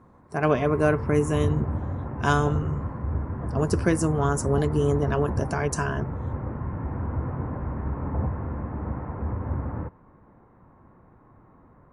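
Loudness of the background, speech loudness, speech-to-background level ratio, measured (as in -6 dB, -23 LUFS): -31.0 LUFS, -25.5 LUFS, 5.5 dB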